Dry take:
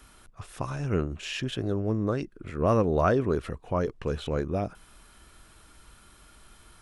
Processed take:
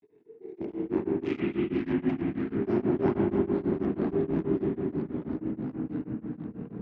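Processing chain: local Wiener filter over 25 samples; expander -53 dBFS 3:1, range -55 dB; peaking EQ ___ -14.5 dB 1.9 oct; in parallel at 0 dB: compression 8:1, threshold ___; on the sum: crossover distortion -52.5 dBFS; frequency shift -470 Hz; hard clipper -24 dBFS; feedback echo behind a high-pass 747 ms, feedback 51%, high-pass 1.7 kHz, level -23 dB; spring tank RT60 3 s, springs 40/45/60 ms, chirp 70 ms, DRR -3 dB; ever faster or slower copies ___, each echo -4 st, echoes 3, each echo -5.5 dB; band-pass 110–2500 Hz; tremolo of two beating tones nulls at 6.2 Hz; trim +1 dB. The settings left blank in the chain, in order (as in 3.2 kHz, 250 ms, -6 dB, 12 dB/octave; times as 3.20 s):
700 Hz, -43 dBFS, 165 ms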